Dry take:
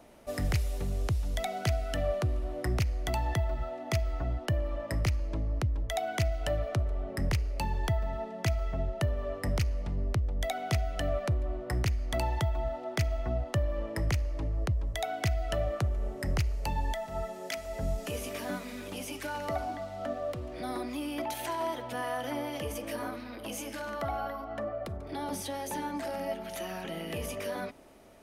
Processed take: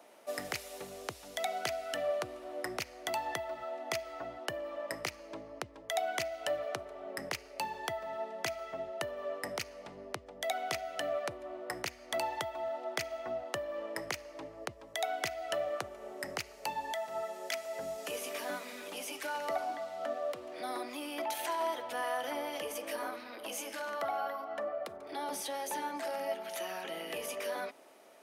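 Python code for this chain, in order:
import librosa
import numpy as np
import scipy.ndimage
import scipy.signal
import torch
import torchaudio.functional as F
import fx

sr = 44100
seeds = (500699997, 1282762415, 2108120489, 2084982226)

y = scipy.signal.sosfilt(scipy.signal.butter(2, 440.0, 'highpass', fs=sr, output='sos'), x)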